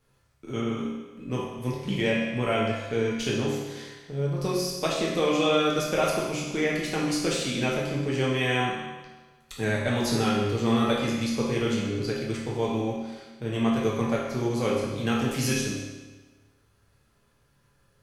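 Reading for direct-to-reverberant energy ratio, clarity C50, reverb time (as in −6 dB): −5.5 dB, 0.5 dB, 1.3 s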